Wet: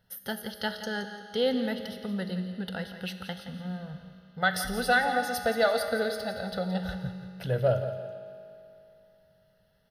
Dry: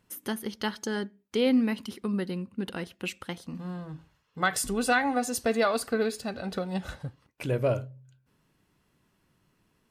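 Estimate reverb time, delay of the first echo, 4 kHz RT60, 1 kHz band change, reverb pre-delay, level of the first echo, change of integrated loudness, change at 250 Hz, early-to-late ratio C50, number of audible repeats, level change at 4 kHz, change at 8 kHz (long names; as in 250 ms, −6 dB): 3.0 s, 171 ms, 2.7 s, +1.0 dB, 5 ms, −12.0 dB, −0.5 dB, −4.0 dB, 7.0 dB, 2, +2.0 dB, −6.5 dB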